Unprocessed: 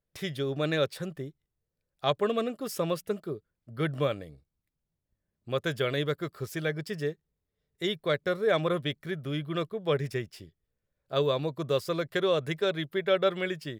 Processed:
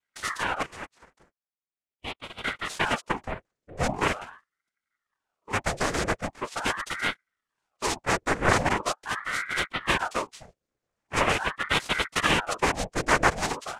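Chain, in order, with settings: 0.62–2.44 s: ladder band-pass 960 Hz, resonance 45%; noise-vocoded speech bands 3; ring modulator with a swept carrier 970 Hz, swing 85%, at 0.42 Hz; trim +5.5 dB

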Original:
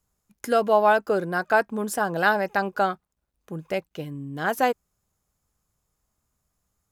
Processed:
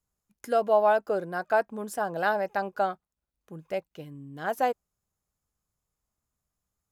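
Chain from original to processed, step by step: dynamic bell 640 Hz, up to +7 dB, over -33 dBFS, Q 1.4; trim -8.5 dB

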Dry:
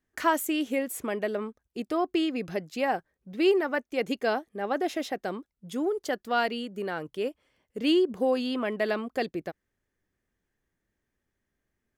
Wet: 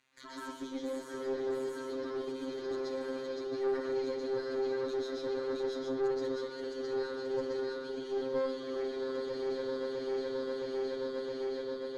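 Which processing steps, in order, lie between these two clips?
backward echo that repeats 333 ms, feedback 78%, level -9 dB; resonant high shelf 2.4 kHz +11.5 dB, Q 3; reverse; compression, threshold -34 dBFS, peak gain reduction 20 dB; reverse; peak limiter -32.5 dBFS, peak gain reduction 10.5 dB; waveshaping leveller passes 2; static phaser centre 740 Hz, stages 6; added noise white -66 dBFS; robot voice 132 Hz; distance through air 100 m; reverberation RT60 0.45 s, pre-delay 118 ms, DRR -4.5 dB; valve stage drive 24 dB, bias 0.6; repeats whose band climbs or falls 118 ms, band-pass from 3 kHz, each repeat -1.4 oct, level -7 dB

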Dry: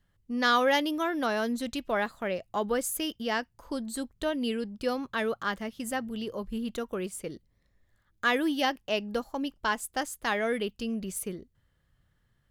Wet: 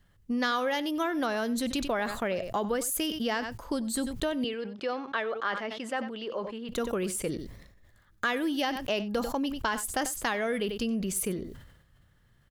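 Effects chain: compression 5:1, threshold -33 dBFS, peak gain reduction 12 dB; 4.44–6.69 s: band-pass 410–3400 Hz; delay 93 ms -19 dB; decay stretcher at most 62 dB/s; trim +6 dB

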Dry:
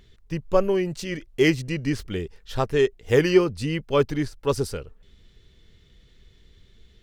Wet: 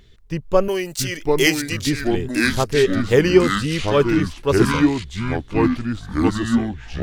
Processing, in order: 0.68–1.87 s: RIAA curve recording; ever faster or slower copies 602 ms, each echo -4 st, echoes 3; trim +3.5 dB

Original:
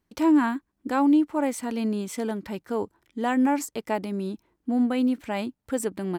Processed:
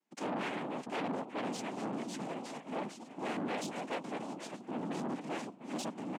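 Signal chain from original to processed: chunks repeated in reverse 505 ms, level -7.5 dB; on a send: shuffle delay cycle 1218 ms, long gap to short 3:1, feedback 41%, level -19 dB; on the sum: flange 0.35 Hz, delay 4.2 ms, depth 8.3 ms, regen +27%; harmony voices -12 st -2 dB; noise-vocoded speech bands 4; peak limiter -17.5 dBFS, peak gain reduction 12.5 dB; saturation -26.5 dBFS, distortion -11 dB; high-pass 200 Hz 24 dB/octave; trim -4.5 dB

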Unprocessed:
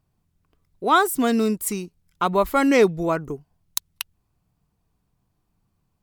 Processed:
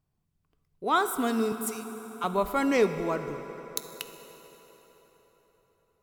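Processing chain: 1.52–2.24 s: high-pass 1.1 kHz; on a send: reverberation RT60 4.6 s, pre-delay 3 ms, DRR 8 dB; on the sum: trim -7.5 dB

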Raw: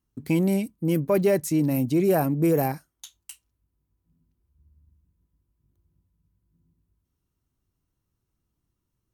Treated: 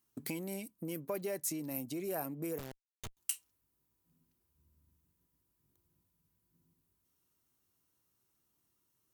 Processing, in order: compression 6:1, threshold -36 dBFS, peak gain reduction 17.5 dB; high-pass 450 Hz 6 dB/octave; treble shelf 7.1 kHz +8.5 dB; 2.58–3.17 s: Schmitt trigger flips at -36.5 dBFS; trim +2.5 dB

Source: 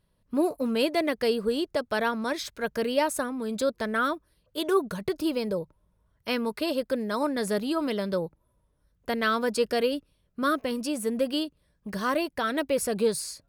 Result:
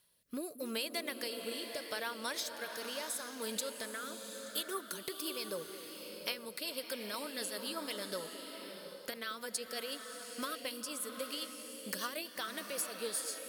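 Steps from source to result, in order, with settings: tilt EQ +4.5 dB/octave; compression 6:1, threshold -37 dBFS, peak gain reduction 21 dB; rotary cabinet horn 0.8 Hz, later 8 Hz, at 4.03 s; repeats whose band climbs or falls 219 ms, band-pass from 360 Hz, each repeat 1.4 oct, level -10.5 dB; swelling reverb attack 780 ms, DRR 5.5 dB; trim +1.5 dB

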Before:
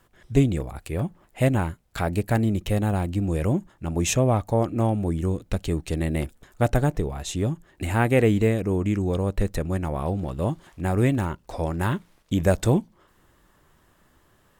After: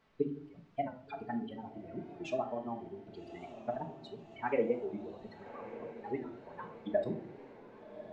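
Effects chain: expander on every frequency bin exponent 3; high-pass 530 Hz 12 dB/octave; peaking EQ 1.2 kHz -8.5 dB 1.1 oct; in parallel at +2 dB: compression 16:1, threshold -42 dBFS, peak gain reduction 18.5 dB; on the sum: time stretch by phase-locked vocoder 0.58×; word length cut 10-bit, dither triangular; tape spacing loss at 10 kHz 45 dB; echo that smears into a reverb 1231 ms, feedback 59%, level -13 dB; simulated room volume 580 m³, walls furnished, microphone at 1.4 m; speed mistake 24 fps film run at 25 fps; warped record 45 rpm, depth 100 cents; trim +1 dB

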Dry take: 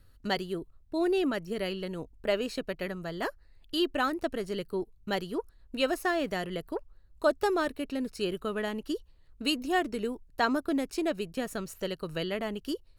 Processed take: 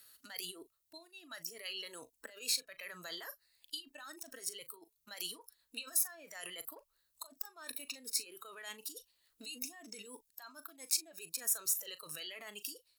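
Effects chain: compressor with a negative ratio -39 dBFS, ratio -1; differentiator; doubling 39 ms -13.5 dB; spectral noise reduction 13 dB; three bands compressed up and down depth 40%; trim +9.5 dB

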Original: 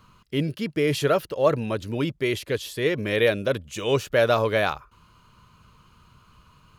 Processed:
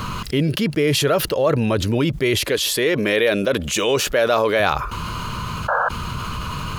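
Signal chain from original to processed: 2.44–4.60 s: peaking EQ 96 Hz -13.5 dB 1.4 oct; 5.68–5.89 s: painted sound noise 460–1700 Hz -29 dBFS; level flattener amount 70%

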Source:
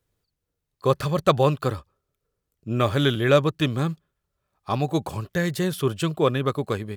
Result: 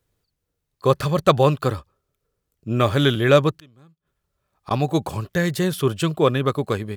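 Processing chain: 3.53–4.71 s: inverted gate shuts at -28 dBFS, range -30 dB; trim +3 dB

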